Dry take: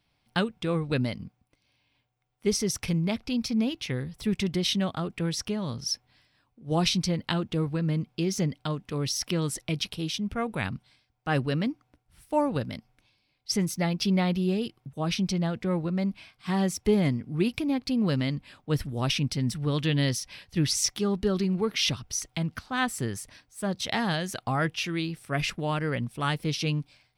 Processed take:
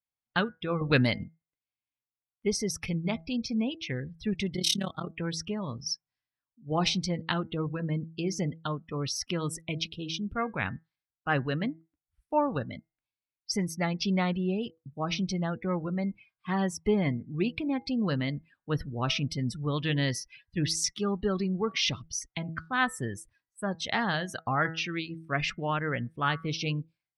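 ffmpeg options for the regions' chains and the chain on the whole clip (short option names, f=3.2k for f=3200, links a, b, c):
-filter_complex "[0:a]asettb=1/sr,asplit=3[a][b][c];[a]atrim=end=0.814[d];[b]atrim=start=0.81:end=1.24,asetpts=PTS-STARTPTS,afade=t=in:d=0.004:c=qsin,afade=t=out:st=0.426:d=0.004:c=qsin,acontrast=51,adynamicequalizer=threshold=0.0158:dfrequency=1800:dqfactor=0.7:tfrequency=1800:tqfactor=0.7:attack=5:release=100:ratio=0.375:range=2:mode=boostabove:tftype=highshelf[e];[c]atrim=start=1.236[f];[d][e]acrossfade=d=0.004:c1=hsin:c2=qsin[g];[g][f]acrossfade=d=0.004:c1=qsin:c2=hsin,asettb=1/sr,asplit=3[h][i][j];[h]atrim=end=4.564[k];[i]atrim=start=4.56:end=5.13,asetpts=PTS-STARTPTS,afade=t=in:d=0.004:c=qsin,afade=t=out:st=0.566:d=0.004:c=qsin,bass=f=250:g=2,treble=f=4k:g=15,tremolo=f=35:d=0.889[l];[j]atrim=start=5.126[m];[k][l]acrossfade=d=0.004:c1=hsin:c2=qsin[n];[n][m]acrossfade=d=0.004:c1=qsin:c2=hsin,bandreject=f=162.4:t=h:w=4,bandreject=f=324.8:t=h:w=4,bandreject=f=487.2:t=h:w=4,bandreject=f=649.6:t=h:w=4,bandreject=f=812:t=h:w=4,bandreject=f=974.4:t=h:w=4,bandreject=f=1.1368k:t=h:w=4,bandreject=f=1.2992k:t=h:w=4,bandreject=f=1.4616k:t=h:w=4,bandreject=f=1.624k:t=h:w=4,bandreject=f=1.7864k:t=h:w=4,bandreject=f=1.9488k:t=h:w=4,bandreject=f=2.1112k:t=h:w=4,afftdn=nr=28:nf=-40,equalizer=f=1.4k:w=0.81:g=6.5,volume=-3.5dB"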